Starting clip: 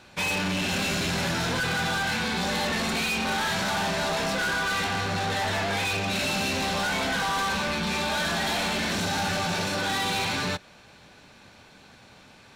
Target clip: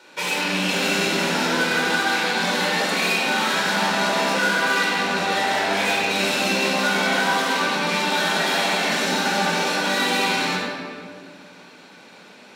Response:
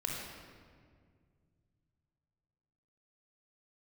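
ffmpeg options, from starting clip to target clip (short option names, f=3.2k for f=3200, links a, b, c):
-filter_complex "[0:a]highpass=f=230:w=0.5412,highpass=f=230:w=1.3066[a];[1:a]atrim=start_sample=2205[b];[a][b]afir=irnorm=-1:irlink=0,volume=3.5dB"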